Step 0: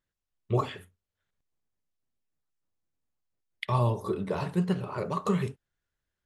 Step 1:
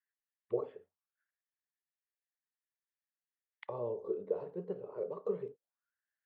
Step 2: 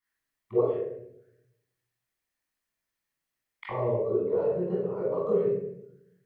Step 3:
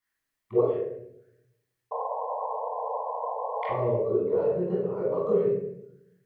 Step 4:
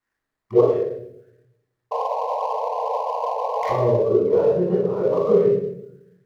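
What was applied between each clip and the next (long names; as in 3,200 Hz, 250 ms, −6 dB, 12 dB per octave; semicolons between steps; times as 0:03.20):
envelope filter 470–1,800 Hz, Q 6, down, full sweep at −32 dBFS; level +1.5 dB
convolution reverb RT60 0.75 s, pre-delay 19 ms, DRR −7 dB; level −2 dB
sound drawn into the spectrogram noise, 0:01.91–0:03.76, 440–1,100 Hz −33 dBFS; level +1.5 dB
running median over 15 samples; level +7.5 dB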